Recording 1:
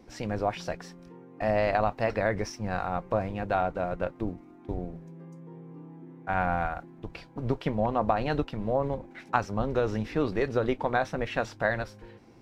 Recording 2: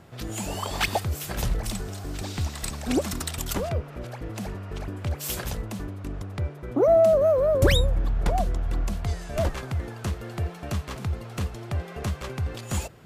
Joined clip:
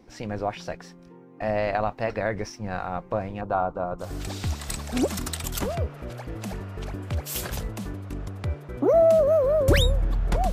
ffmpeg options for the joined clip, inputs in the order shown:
ffmpeg -i cue0.wav -i cue1.wav -filter_complex "[0:a]asettb=1/sr,asplit=3[link_01][link_02][link_03];[link_01]atrim=end=3.414[link_04];[link_02]atrim=start=3.41:end=4.08,asetpts=PTS-STARTPTS,afade=type=in:duration=0.004:curve=qsin,afade=type=out:start_time=0.666:duration=0.004:curve=qsin,highshelf=frequency=1500:width_type=q:width=3:gain=-7.5[link_05];[link_03]atrim=start=4.076[link_06];[link_04][link_05]acrossfade=duration=0.004:curve1=hsin:curve2=qsin[link_07];[link_07][link_06]acrossfade=duration=0.004:curve1=qsin:curve2=hsin,apad=whole_dur=10.52,atrim=end=10.52,atrim=end=4.08,asetpts=PTS-STARTPTS[link_08];[1:a]atrim=start=1.92:end=8.46,asetpts=PTS-STARTPTS[link_09];[link_08][link_09]acrossfade=duration=0.1:curve1=tri:curve2=tri" out.wav

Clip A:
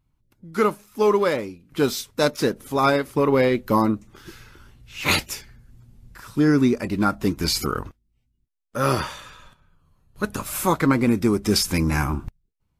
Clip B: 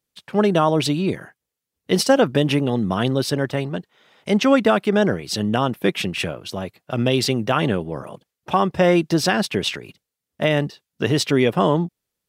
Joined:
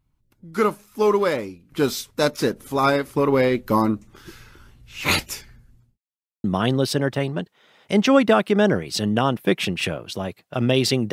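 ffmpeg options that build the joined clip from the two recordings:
ffmpeg -i cue0.wav -i cue1.wav -filter_complex "[0:a]apad=whole_dur=11.12,atrim=end=11.12,asplit=2[link_01][link_02];[link_01]atrim=end=5.98,asetpts=PTS-STARTPTS,afade=type=out:start_time=5.56:duration=0.42[link_03];[link_02]atrim=start=5.98:end=6.44,asetpts=PTS-STARTPTS,volume=0[link_04];[1:a]atrim=start=2.81:end=7.49,asetpts=PTS-STARTPTS,afade=type=in:duration=0.004:curve=hsin[link_05];[link_03][link_04][link_05]concat=n=3:v=0:a=1" out.wav

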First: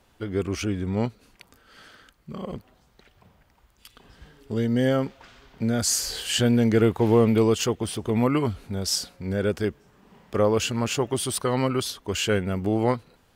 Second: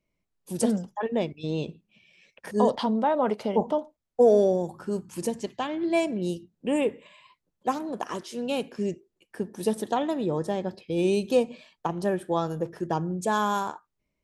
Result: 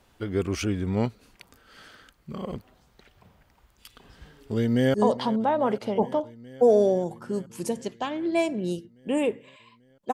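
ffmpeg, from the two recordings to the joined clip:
ffmpeg -i cue0.wav -i cue1.wav -filter_complex "[0:a]apad=whole_dur=10.13,atrim=end=10.13,atrim=end=4.942[link_01];[1:a]atrim=start=2.518:end=7.71[link_02];[link_01][link_02]acrossfade=duration=0.004:curve1=hsin:curve2=hsin,asplit=2[link_03][link_04];[link_04]afade=type=in:start_time=4.55:duration=0.01,afade=type=out:start_time=4.94:duration=0.01,aecho=0:1:420|840|1260|1680|2100|2520|2940|3360|3780|4200|4620|5040:0.141254|0.113003|0.0904024|0.0723219|0.0578575|0.046286|0.0370288|0.0296231|0.0236984|0.0189588|0.015167|0.0121336[link_05];[link_03][link_05]amix=inputs=2:normalize=0" out.wav

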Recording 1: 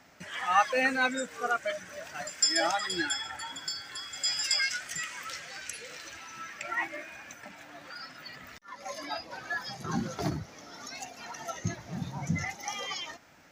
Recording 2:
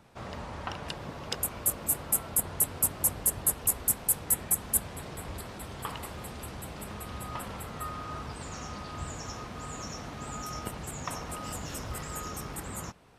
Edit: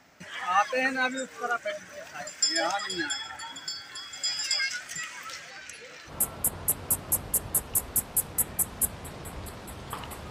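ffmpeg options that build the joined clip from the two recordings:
ffmpeg -i cue0.wav -i cue1.wav -filter_complex "[0:a]asettb=1/sr,asplit=3[link_01][link_02][link_03];[link_01]atrim=end=5.504[link_04];[link_02]atrim=start=5.5:end=6.13,asetpts=PTS-STARTPTS,afade=type=in:duration=0.004:curve=qsin,afade=type=out:start_time=0.626:duration=0.004:curve=qsin,highshelf=frequency=5700:gain=-8.5[link_05];[link_03]atrim=start=6.126[link_06];[link_04][link_05]acrossfade=duration=0.004:curve1=hsin:curve2=qsin[link_07];[link_07][link_06]acrossfade=duration=0.004:curve1=qsin:curve2=hsin,apad=whole_dur=10.3,atrim=end=10.3,atrim=end=6.13,asetpts=PTS-STARTPTS[link_08];[1:a]atrim=start=1.97:end=6.22,asetpts=PTS-STARTPTS[link_09];[link_08][link_09]acrossfade=duration=0.08:curve1=tri:curve2=tri" out.wav

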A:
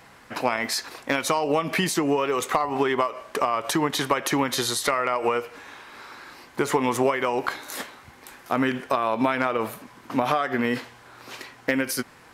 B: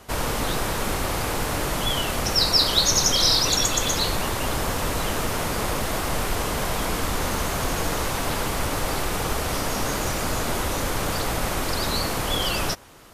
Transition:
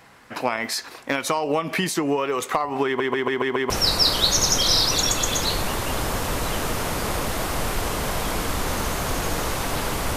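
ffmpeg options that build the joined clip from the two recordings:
ffmpeg -i cue0.wav -i cue1.wav -filter_complex "[0:a]apad=whole_dur=10.16,atrim=end=10.16,asplit=6[link_01][link_02][link_03][link_04][link_05][link_06];[link_01]atrim=end=3.002[link_07];[link_02]atrim=start=2.858:end=3.002[link_08];[link_03]atrim=start=2.858:end=3.002[link_09];[link_04]atrim=start=2.858:end=3.002[link_10];[link_05]atrim=start=2.858:end=3.002[link_11];[link_06]atrim=start=2.858:end=3.002[link_12];[1:a]atrim=start=2.238:end=8.7[link_13];[link_07][link_08]acrossfade=duration=0.004:curve1=hsin:curve2=hsin[link_14];[link_14][link_09]acrossfade=duration=0.004:curve1=hsin:curve2=hsin[link_15];[link_15][link_10]acrossfade=duration=0.004:curve1=hsin:curve2=hsin[link_16];[link_16][link_11]acrossfade=duration=0.004:curve1=hsin:curve2=hsin[link_17];[link_17][link_12]acrossfade=duration=0.004:curve1=hsin:curve2=hsin[link_18];[link_18][link_13]acrossfade=duration=0.004:curve1=hsin:curve2=hsin" out.wav

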